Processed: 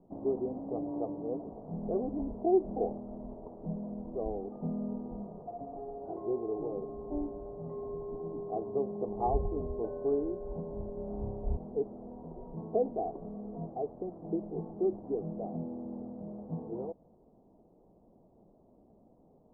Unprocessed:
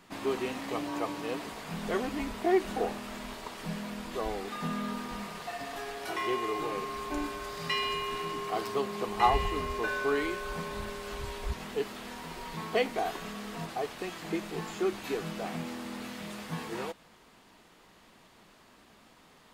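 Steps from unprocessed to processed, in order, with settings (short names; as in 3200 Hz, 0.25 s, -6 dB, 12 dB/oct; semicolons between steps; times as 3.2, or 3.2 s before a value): rattling part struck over -30 dBFS, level -19 dBFS; steep low-pass 720 Hz 36 dB/oct; 10.94–11.57 flutter echo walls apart 5 m, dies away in 0.75 s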